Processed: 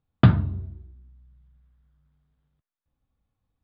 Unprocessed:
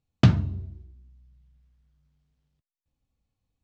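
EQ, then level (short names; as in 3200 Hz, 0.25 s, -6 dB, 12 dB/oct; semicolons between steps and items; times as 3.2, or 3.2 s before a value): rippled Chebyshev low-pass 5000 Hz, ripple 6 dB; air absorption 340 m; +8.0 dB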